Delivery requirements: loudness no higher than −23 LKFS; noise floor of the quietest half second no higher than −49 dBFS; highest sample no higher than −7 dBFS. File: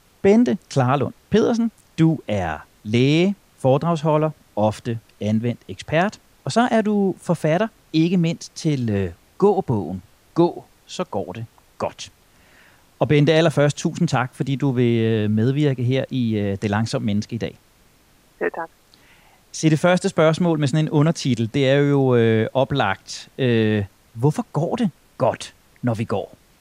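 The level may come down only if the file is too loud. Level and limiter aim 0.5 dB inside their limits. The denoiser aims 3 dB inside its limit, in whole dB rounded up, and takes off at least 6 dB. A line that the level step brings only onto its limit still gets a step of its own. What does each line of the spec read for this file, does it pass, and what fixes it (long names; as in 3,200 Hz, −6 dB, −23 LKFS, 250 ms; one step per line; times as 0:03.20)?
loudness −20.5 LKFS: out of spec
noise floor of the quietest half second −55 dBFS: in spec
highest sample −5.0 dBFS: out of spec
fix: level −3 dB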